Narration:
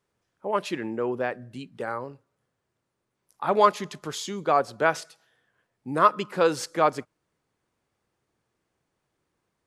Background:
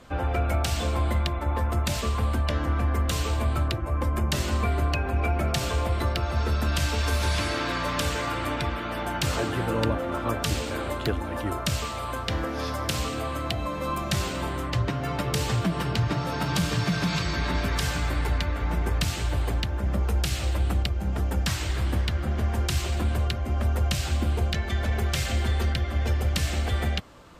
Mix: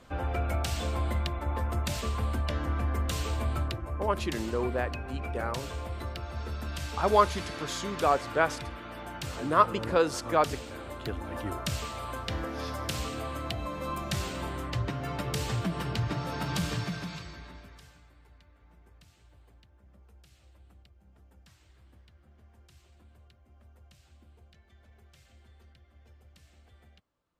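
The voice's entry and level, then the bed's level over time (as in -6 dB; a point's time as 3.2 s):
3.55 s, -3.0 dB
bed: 3.57 s -5 dB
4.23 s -11 dB
10.88 s -11 dB
11.33 s -5.5 dB
16.72 s -5.5 dB
18.11 s -32.5 dB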